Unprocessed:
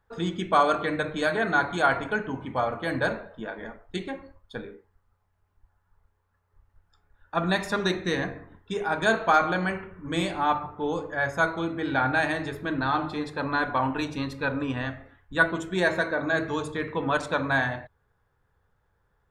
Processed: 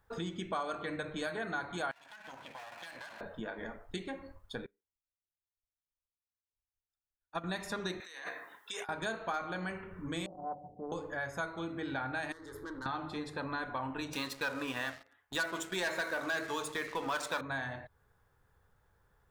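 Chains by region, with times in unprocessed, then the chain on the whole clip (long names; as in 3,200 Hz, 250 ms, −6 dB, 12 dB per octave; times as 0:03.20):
0:01.91–0:03.21: lower of the sound and its delayed copy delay 1.2 ms + high-pass filter 1,500 Hz 6 dB per octave + downward compressor 16 to 1, threshold −44 dBFS
0:04.66–0:07.44: high-shelf EQ 3,900 Hz +7.5 dB + expander for the loud parts 2.5 to 1, over −47 dBFS
0:08.00–0:08.89: high-pass filter 920 Hz + high-shelf EQ 7,300 Hz +8.5 dB + compressor whose output falls as the input rises −42 dBFS
0:10.26–0:10.92: Chebyshev low-pass with heavy ripple 770 Hz, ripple 9 dB + low-shelf EQ 280 Hz −7 dB + highs frequency-modulated by the lows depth 0.22 ms
0:12.32–0:12.86: downward compressor 3 to 1, threshold −33 dBFS + tube saturation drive 34 dB, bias 0.65 + phaser with its sweep stopped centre 690 Hz, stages 6
0:14.13–0:17.41: high-pass filter 770 Hz 6 dB per octave + leveller curve on the samples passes 3
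whole clip: high-shelf EQ 5,600 Hz +7 dB; downward compressor 3 to 1, threshold −39 dBFS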